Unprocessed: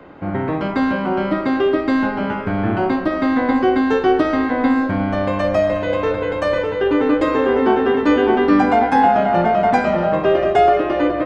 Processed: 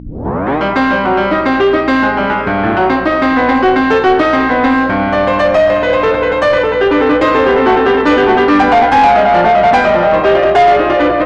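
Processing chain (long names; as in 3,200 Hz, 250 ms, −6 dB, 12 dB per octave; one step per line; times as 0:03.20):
turntable start at the beginning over 0.58 s
hum with harmonics 60 Hz, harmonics 5, −30 dBFS −6 dB per octave
mid-hump overdrive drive 18 dB, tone 3,500 Hz, clips at −2.5 dBFS
level +1.5 dB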